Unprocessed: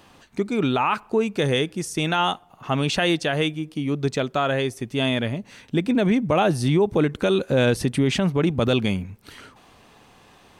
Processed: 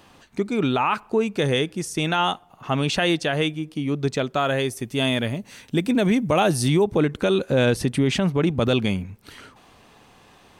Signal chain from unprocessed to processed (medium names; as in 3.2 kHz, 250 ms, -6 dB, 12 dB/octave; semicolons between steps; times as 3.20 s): 4.36–6.83 s: treble shelf 9.8 kHz -> 5 kHz +11.5 dB